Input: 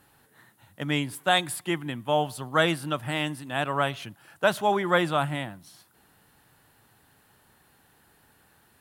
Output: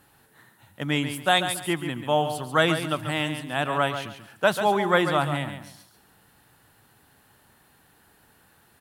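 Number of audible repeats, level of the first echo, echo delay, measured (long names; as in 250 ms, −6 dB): 3, −9.0 dB, 139 ms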